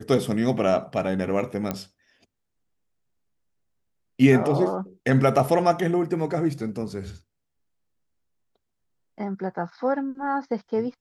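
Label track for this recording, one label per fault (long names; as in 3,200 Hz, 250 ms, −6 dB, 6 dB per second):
1.710000	1.710000	click −12 dBFS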